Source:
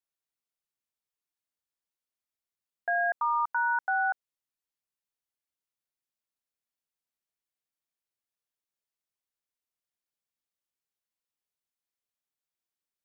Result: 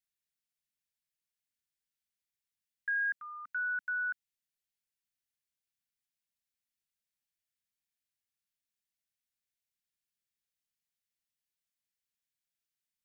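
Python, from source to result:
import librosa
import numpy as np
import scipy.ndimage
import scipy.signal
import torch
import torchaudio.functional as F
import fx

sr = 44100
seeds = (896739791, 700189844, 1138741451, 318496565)

y = scipy.signal.sosfilt(scipy.signal.cheby2(4, 40, [370.0, 1000.0], 'bandstop', fs=sr, output='sos'), x)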